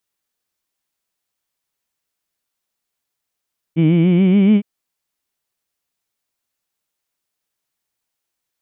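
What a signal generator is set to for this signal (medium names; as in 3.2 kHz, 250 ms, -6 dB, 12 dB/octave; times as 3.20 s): formant-synthesis vowel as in heed, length 0.86 s, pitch 156 Hz, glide +5.5 st, vibrato 7 Hz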